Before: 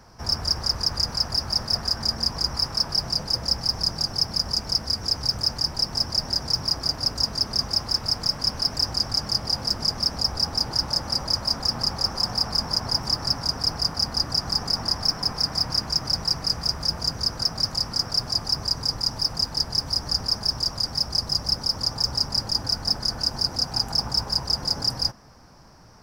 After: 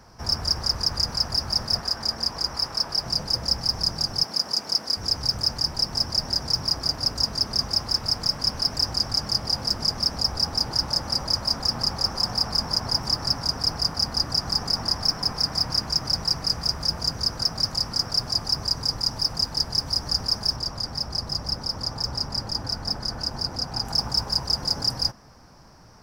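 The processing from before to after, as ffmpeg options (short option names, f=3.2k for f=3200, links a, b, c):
-filter_complex "[0:a]asettb=1/sr,asplit=3[a][b][c];[a]atrim=end=1.804[d];[b]atrim=start=1.8:end=3.06,asetpts=PTS-STARTPTS,afade=t=in:d=0.004:c=qsin,afade=t=out:st=1.256:d=0.004:c=qsin,bass=f=250:g=-7,treble=f=4k:g=-2[e];[c]atrim=start=3.056[f];[d][e]acrossfade=d=0.004:c1=hsin:c2=qsin[g];[g][f]acrossfade=d=0.004:c1=qsin:c2=hsin,asettb=1/sr,asplit=3[h][i][j];[h]atrim=end=4.234[k];[i]atrim=start=4.23:end=4.97,asetpts=PTS-STARTPTS,afade=t=in:d=0.004:c=qsin,afade=t=out:st=0.736:d=0.004:c=qsin,highpass=250[l];[j]atrim=start=4.966[m];[k][l]acrossfade=d=0.004:c1=hsin:c2=qsin[n];[n][m]acrossfade=d=0.004:c1=qsin:c2=hsin,asettb=1/sr,asplit=3[o][p][q];[o]atrim=end=20.564[r];[p]atrim=start=20.56:end=23.85,asetpts=PTS-STARTPTS,afade=t=in:d=0.004:c=qsin,afade=t=out:st=3.286:d=0.004:c=qsin,highshelf=f=4k:g=-7[s];[q]atrim=start=23.846[t];[r][s]acrossfade=d=0.004:c1=hsin:c2=qsin[u];[u][t]acrossfade=d=0.004:c1=qsin:c2=hsin"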